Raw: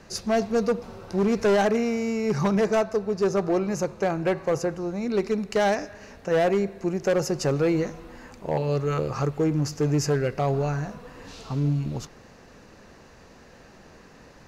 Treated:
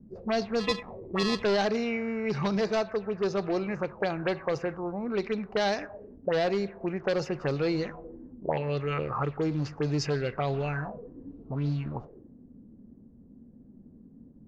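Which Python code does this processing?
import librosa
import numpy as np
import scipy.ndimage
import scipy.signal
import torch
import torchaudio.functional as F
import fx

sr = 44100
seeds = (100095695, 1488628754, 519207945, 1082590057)

y = fx.sample_hold(x, sr, seeds[0], rate_hz=1500.0, jitter_pct=0, at=(0.59, 1.42), fade=0.02)
y = fx.envelope_lowpass(y, sr, base_hz=210.0, top_hz=4500.0, q=4.0, full_db=-19.5, direction='up')
y = y * librosa.db_to_amplitude(-5.5)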